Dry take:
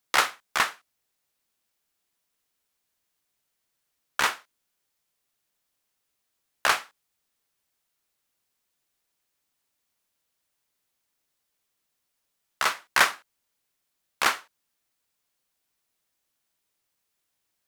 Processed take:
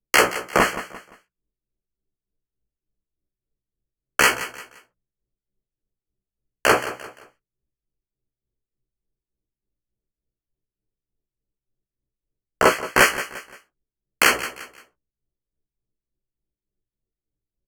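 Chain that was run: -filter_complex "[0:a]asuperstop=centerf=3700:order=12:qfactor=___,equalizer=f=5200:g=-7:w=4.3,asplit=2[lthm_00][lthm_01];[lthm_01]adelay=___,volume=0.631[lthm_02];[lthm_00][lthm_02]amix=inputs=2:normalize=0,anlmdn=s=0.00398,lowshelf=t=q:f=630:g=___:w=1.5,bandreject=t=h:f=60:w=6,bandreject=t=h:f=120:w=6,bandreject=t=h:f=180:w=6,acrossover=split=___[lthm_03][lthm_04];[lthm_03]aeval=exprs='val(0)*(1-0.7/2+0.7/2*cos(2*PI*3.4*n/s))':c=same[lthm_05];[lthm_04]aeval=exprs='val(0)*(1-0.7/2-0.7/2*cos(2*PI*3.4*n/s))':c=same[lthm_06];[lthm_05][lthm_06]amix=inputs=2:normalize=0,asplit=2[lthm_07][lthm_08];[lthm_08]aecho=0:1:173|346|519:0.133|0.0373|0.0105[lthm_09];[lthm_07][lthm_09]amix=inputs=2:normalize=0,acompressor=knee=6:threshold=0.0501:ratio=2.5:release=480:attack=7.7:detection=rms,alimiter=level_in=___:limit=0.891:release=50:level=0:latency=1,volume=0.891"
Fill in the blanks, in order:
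3.8, 16, 9.5, 1300, 7.08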